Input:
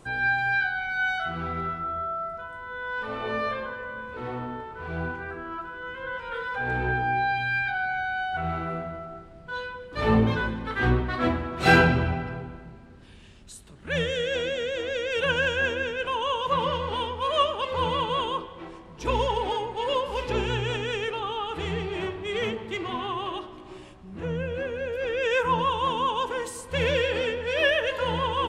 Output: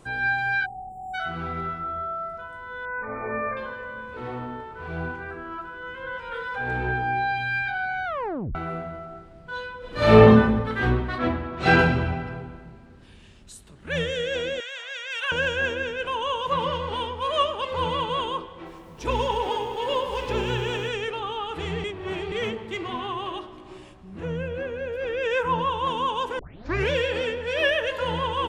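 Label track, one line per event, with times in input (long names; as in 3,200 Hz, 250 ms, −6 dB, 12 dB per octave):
0.660000	1.140000	time-frequency box erased 990–6,900 Hz
2.850000	3.570000	linear-phase brick-wall low-pass 2,500 Hz
8.050000	8.050000	tape stop 0.50 s
9.780000	10.210000	thrown reverb, RT60 1.1 s, DRR −10 dB
11.180000	11.790000	high-frequency loss of the air 94 metres
14.600000	15.320000	high-pass filter 850 Hz 24 dB per octave
18.550000	20.890000	feedback echo at a low word length 103 ms, feedback 80%, word length 9 bits, level −11 dB
21.840000	22.320000	reverse
24.480000	25.870000	high-shelf EQ 4,200 Hz −6.5 dB
26.390000	26.390000	tape start 0.51 s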